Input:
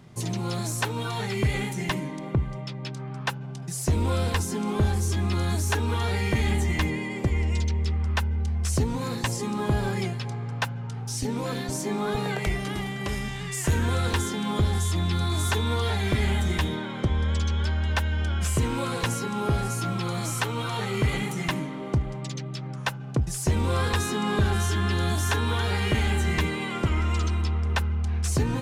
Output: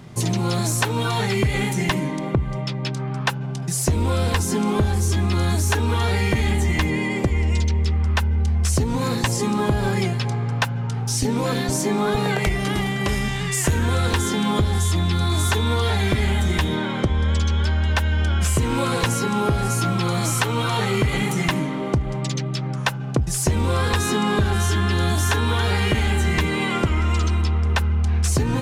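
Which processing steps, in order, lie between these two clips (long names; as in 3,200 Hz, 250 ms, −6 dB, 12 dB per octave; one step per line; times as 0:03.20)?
downward compressor, threshold −25 dBFS, peak gain reduction 6.5 dB
level +8.5 dB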